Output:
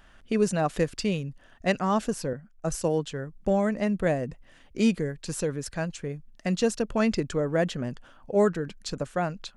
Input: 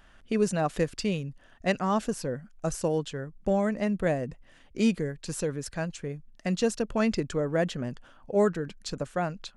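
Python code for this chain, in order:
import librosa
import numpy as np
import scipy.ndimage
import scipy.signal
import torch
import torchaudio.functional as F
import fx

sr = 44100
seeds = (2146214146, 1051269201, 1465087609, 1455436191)

y = fx.band_widen(x, sr, depth_pct=40, at=(2.33, 3.1))
y = y * 10.0 ** (1.5 / 20.0)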